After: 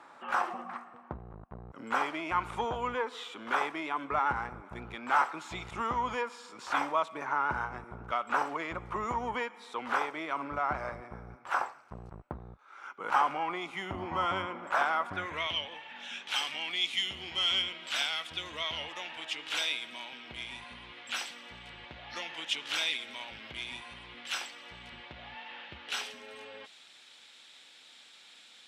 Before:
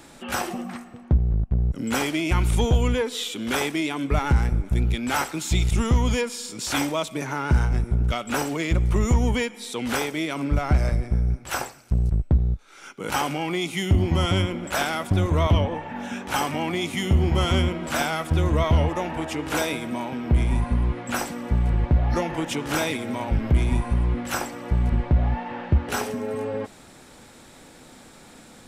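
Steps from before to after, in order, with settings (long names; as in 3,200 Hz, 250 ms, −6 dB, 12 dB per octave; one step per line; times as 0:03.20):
band-pass filter sweep 1,100 Hz → 3,300 Hz, 0:15.03–0:15.55
level +3.5 dB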